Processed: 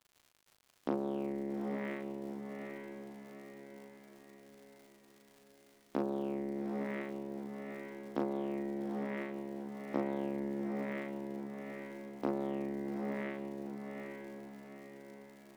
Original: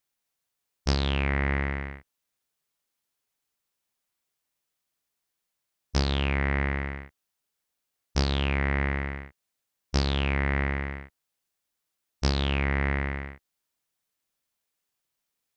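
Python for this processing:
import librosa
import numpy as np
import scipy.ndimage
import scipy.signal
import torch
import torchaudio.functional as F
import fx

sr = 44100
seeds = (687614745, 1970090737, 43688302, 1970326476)

y = fx.cvsd(x, sr, bps=64000)
y = scipy.signal.sosfilt(scipy.signal.ellip(3, 1.0, 40, [250.0, 3700.0], 'bandpass', fs=sr, output='sos'), y)
y = fx.env_lowpass_down(y, sr, base_hz=390.0, full_db=-29.0)
y = fx.dmg_crackle(y, sr, seeds[0], per_s=100.0, level_db=-49.0)
y = fx.doubler(y, sr, ms=38.0, db=-4.0)
y = fx.echo_diffused(y, sr, ms=830, feedback_pct=49, wet_db=-4.5)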